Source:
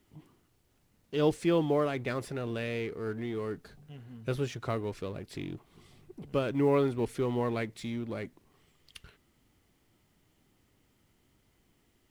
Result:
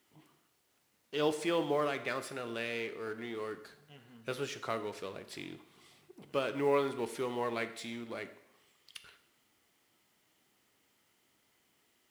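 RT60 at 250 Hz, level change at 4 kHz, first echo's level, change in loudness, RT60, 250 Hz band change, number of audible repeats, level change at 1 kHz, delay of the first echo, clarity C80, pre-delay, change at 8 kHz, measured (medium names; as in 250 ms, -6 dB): 0.85 s, +1.5 dB, no echo, -4.0 dB, 0.75 s, -7.5 dB, no echo, 0.0 dB, no echo, 15.0 dB, 6 ms, +2.0 dB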